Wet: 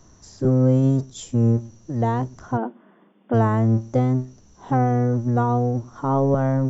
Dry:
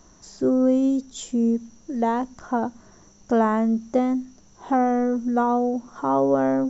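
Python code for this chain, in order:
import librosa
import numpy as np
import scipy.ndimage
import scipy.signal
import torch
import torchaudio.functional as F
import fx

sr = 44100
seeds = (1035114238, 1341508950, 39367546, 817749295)

y = fx.octave_divider(x, sr, octaves=1, level_db=4.0)
y = fx.brickwall_bandpass(y, sr, low_hz=170.0, high_hz=3600.0, at=(2.56, 3.33), fade=0.02)
y = y * 10.0 ** (-1.5 / 20.0)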